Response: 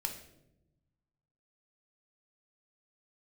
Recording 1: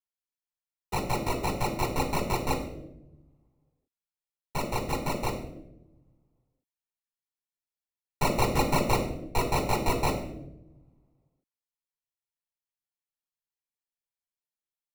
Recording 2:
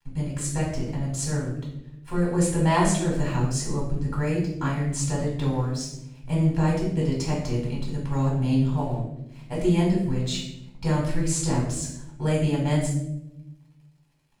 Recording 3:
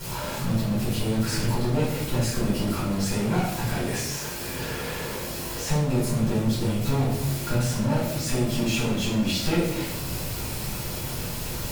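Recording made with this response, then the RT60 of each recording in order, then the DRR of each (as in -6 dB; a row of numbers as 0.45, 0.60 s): 1; 0.90, 0.90, 0.90 s; 3.5, -4.5, -10.5 dB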